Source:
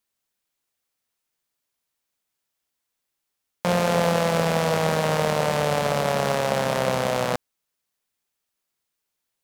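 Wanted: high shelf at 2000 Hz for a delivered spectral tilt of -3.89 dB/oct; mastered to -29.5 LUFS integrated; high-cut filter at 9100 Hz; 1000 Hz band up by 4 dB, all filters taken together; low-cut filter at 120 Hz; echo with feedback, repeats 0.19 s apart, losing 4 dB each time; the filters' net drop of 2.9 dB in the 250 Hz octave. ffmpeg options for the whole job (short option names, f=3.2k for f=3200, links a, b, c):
-af "highpass=120,lowpass=9.1k,equalizer=f=250:t=o:g=-4,equalizer=f=1k:t=o:g=6.5,highshelf=f=2k:g=-4.5,aecho=1:1:190|380|570|760|950|1140|1330|1520|1710:0.631|0.398|0.25|0.158|0.0994|0.0626|0.0394|0.0249|0.0157,volume=-9.5dB"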